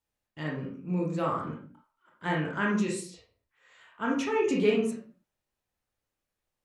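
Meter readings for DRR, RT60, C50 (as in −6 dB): −2.5 dB, non-exponential decay, 4.0 dB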